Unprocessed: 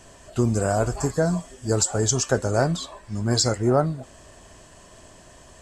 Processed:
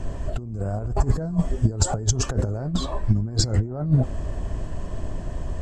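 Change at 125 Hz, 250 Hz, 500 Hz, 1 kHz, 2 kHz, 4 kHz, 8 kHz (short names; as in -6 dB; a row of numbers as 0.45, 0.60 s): +3.0, -1.5, -8.0, -5.0, -9.0, -3.0, -4.5 dB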